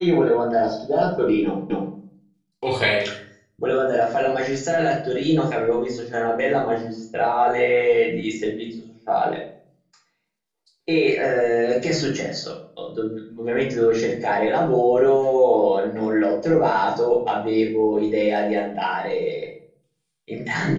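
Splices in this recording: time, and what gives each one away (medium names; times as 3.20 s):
1.70 s: repeat of the last 0.25 s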